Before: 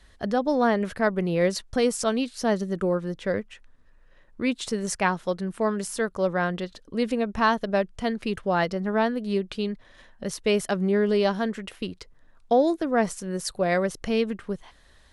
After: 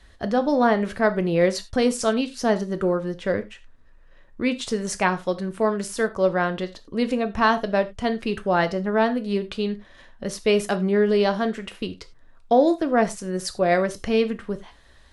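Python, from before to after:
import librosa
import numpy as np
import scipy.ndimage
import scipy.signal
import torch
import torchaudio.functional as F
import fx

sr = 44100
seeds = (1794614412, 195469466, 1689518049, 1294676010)

y = fx.high_shelf(x, sr, hz=8600.0, db=-6.0)
y = fx.rev_gated(y, sr, seeds[0], gate_ms=120, shape='falling', drr_db=9.0)
y = y * librosa.db_to_amplitude(2.5)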